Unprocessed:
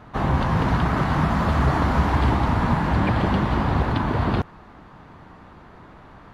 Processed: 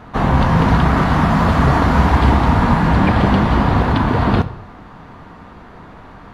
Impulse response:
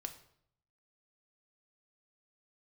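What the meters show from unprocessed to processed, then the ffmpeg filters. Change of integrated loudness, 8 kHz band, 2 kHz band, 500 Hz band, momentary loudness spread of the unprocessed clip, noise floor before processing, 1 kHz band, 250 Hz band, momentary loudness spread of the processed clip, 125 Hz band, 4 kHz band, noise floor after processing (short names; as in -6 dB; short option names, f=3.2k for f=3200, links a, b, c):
+7.0 dB, n/a, +7.0 dB, +7.0 dB, 3 LU, -47 dBFS, +7.0 dB, +7.5 dB, 3 LU, +6.5 dB, +7.0 dB, -39 dBFS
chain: -filter_complex "[0:a]asplit=2[a][b];[1:a]atrim=start_sample=2205[c];[b][c]afir=irnorm=-1:irlink=0,volume=6.5dB[d];[a][d]amix=inputs=2:normalize=0,volume=-1dB"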